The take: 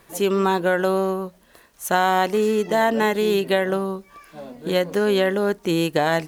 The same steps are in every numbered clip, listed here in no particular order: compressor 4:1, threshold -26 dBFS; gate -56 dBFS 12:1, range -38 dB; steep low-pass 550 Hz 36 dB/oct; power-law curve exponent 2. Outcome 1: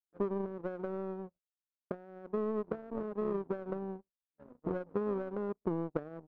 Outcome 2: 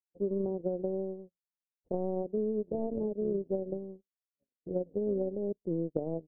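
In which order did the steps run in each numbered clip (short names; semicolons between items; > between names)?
compressor > steep low-pass > power-law curve > gate; power-law curve > gate > steep low-pass > compressor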